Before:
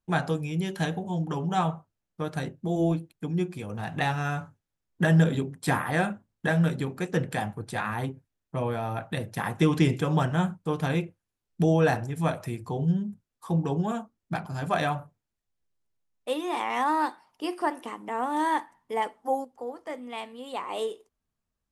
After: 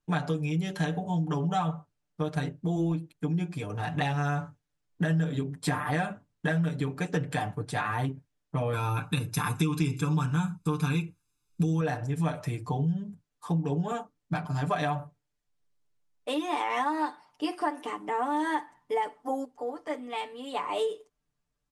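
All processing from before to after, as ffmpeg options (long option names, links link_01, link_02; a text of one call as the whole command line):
ffmpeg -i in.wav -filter_complex "[0:a]asettb=1/sr,asplit=3[link_01][link_02][link_03];[link_01]atrim=end=8.734[link_04];[link_02]atrim=start=8.73:end=11.81,asetpts=PTS-STARTPTS,afade=type=in:duration=0.004:curve=qsin,afade=type=out:start_time=3.076:duration=0.004:curve=qsin,highshelf=frequency=5000:gain=12,aecho=1:1:0.8:0.77,atrim=end_sample=135828[link_05];[link_03]atrim=start=11.806[link_06];[link_04][link_05]acrossfade=duration=0.004:curve1=hsin:curve2=qsin[link_07];[link_07][link_06]acrossfade=duration=0.004:curve1=qsin:curve2=hsin,lowpass=9600,aecho=1:1:6.8:0.82,acompressor=threshold=-25dB:ratio=5" out.wav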